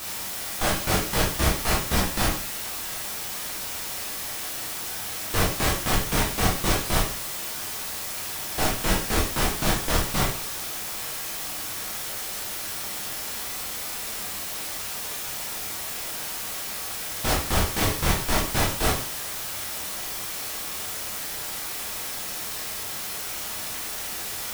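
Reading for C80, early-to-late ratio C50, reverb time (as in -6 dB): 10.0 dB, 5.0 dB, 0.50 s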